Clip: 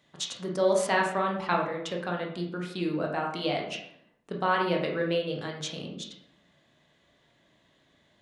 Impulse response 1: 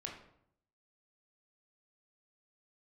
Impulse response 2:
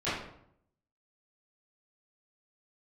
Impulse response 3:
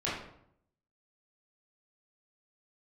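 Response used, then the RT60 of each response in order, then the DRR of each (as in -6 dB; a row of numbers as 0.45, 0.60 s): 1; 0.70, 0.70, 0.70 s; -0.5, -15.5, -9.0 dB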